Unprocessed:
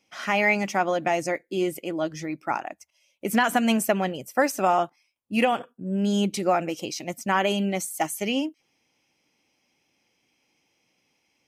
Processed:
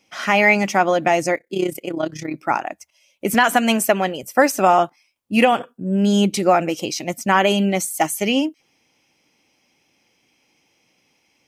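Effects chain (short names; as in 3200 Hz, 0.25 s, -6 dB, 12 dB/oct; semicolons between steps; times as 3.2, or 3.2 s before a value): 1.35–2.34 AM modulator 32 Hz, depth 60%; 3.34–4.23 HPF 290 Hz 6 dB/oct; gain +7 dB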